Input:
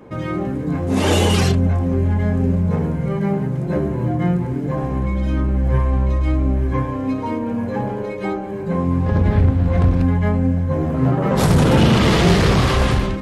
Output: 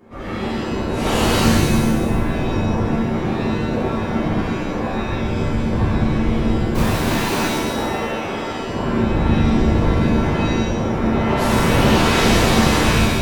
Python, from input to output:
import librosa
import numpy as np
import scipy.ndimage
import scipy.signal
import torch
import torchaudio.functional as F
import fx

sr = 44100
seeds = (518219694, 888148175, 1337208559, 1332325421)

y = fx.halfwave_hold(x, sr, at=(6.74, 7.46), fade=0.02)
y = fx.whisperise(y, sr, seeds[0])
y = fx.rev_shimmer(y, sr, seeds[1], rt60_s=1.1, semitones=7, shimmer_db=-2, drr_db=-6.5)
y = y * 10.0 ** (-9.5 / 20.0)